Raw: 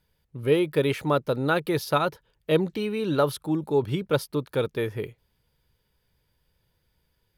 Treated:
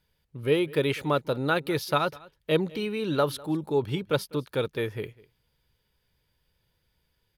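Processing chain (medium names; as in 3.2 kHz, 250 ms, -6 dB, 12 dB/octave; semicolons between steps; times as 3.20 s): peaking EQ 3.1 kHz +3.5 dB 2 oct; delay 200 ms -22.5 dB; trim -2.5 dB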